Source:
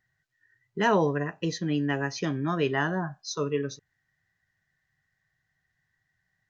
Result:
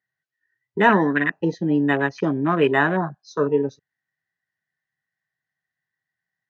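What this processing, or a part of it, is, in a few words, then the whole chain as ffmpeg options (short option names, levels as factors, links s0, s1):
over-cleaned archive recording: -filter_complex "[0:a]highpass=190,lowpass=5800,afwtdn=0.0158,asettb=1/sr,asplit=3[s0][s1][s2];[s0]atrim=end=0.894[s3];[s1]atrim=start=0.89:end=1.32,asetpts=PTS-STARTPTS,afade=t=in:d=0.004:c=qsin,afade=t=out:st=0.426:d=0.004:c=qsin,equalizer=f=125:t=o:w=1:g=-7,equalizer=f=250:t=o:w=1:g=8,equalizer=f=500:t=o:w=1:g=-12,equalizer=f=1000:t=o:w=1:g=-3,equalizer=f=2000:t=o:w=1:g=10[s4];[s2]atrim=start=1.316[s5];[s3][s4]acrossfade=d=0.004:c1=hsin:c2=qsin[s6];[s6][s5]acrossfade=d=0.004:c1=qsin:c2=hsin,volume=2.82"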